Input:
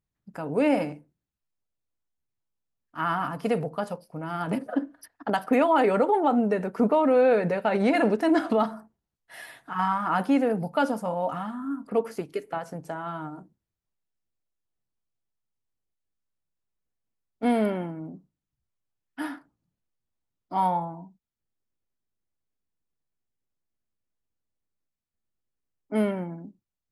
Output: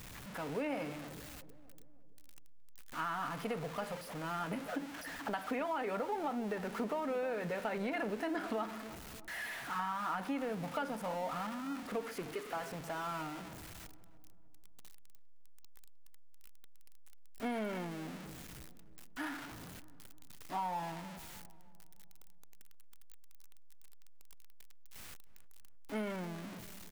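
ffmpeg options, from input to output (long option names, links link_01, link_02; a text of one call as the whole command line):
ffmpeg -i in.wav -filter_complex "[0:a]aeval=exprs='val(0)+0.5*0.0266*sgn(val(0))':channel_layout=same,acrossover=split=2600[link_01][link_02];[link_02]acompressor=threshold=-50dB:ratio=4:attack=1:release=60[link_03];[link_01][link_03]amix=inputs=2:normalize=0,tiltshelf=frequency=1400:gain=-6.5,acompressor=threshold=-27dB:ratio=6,asplit=2[link_04][link_05];[link_05]adelay=309,lowpass=frequency=1000:poles=1,volume=-14.5dB,asplit=2[link_06][link_07];[link_07]adelay=309,lowpass=frequency=1000:poles=1,volume=0.53,asplit=2[link_08][link_09];[link_09]adelay=309,lowpass=frequency=1000:poles=1,volume=0.53,asplit=2[link_10][link_11];[link_11]adelay=309,lowpass=frequency=1000:poles=1,volume=0.53,asplit=2[link_12][link_13];[link_13]adelay=309,lowpass=frequency=1000:poles=1,volume=0.53[link_14];[link_06][link_08][link_10][link_12][link_14]amix=inputs=5:normalize=0[link_15];[link_04][link_15]amix=inputs=2:normalize=0,volume=-6.5dB" out.wav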